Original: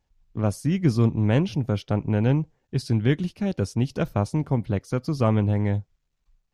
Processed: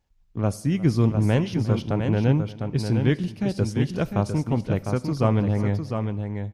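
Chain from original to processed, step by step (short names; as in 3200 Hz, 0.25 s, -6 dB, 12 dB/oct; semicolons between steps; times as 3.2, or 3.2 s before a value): tapped delay 0.356/0.703 s -19/-6.5 dB; Schroeder reverb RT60 1 s, combs from 28 ms, DRR 19.5 dB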